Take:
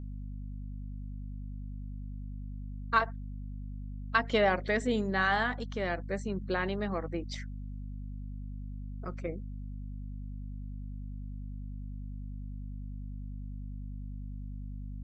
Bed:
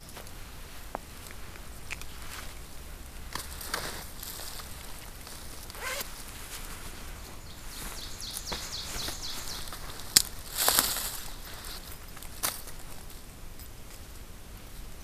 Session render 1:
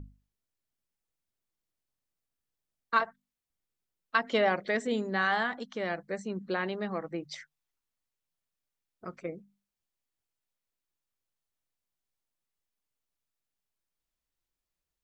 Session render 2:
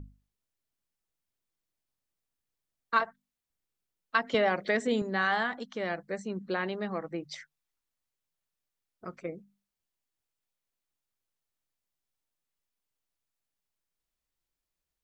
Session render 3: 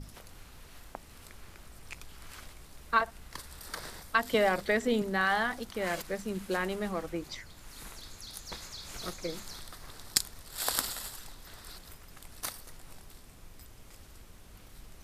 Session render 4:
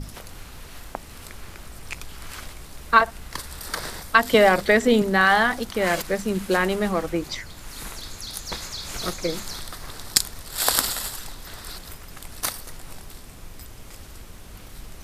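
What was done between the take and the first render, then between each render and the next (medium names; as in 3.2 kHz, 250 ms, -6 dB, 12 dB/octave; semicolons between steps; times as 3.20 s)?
hum notches 50/100/150/200/250 Hz
4.34–5.02 s: three bands compressed up and down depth 70%
add bed -7 dB
trim +10.5 dB; peak limiter -1 dBFS, peak gain reduction 2.5 dB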